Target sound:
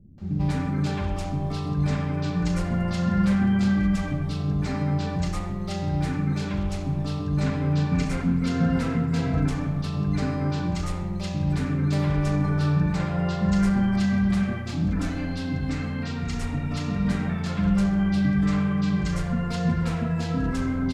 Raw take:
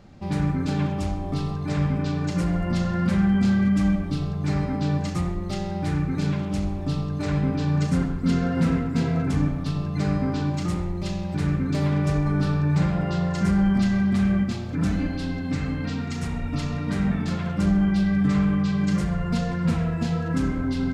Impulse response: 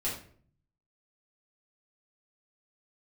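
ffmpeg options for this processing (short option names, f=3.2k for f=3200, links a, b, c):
-filter_complex "[0:a]asettb=1/sr,asplit=3[a][b][c];[a]atrim=end=7.744[d];[b]atrim=start=7.74:end=8.29,asetpts=PTS-STARTPTS,afade=t=in:d=0.004:c=qsin,afade=t=out:st=0.546:d=0.004:c=qsin,equalizer=f=2.3k:t=o:w=0.27:g=9[e];[c]atrim=start=8.286[f];[d][e]acrossfade=d=0.004:c1=hsin:c2=qsin[g];[g][f]acrossfade=d=0.004:c1=qsin:c2=hsin,acrossover=split=320[h][i];[i]adelay=180[j];[h][j]amix=inputs=2:normalize=0"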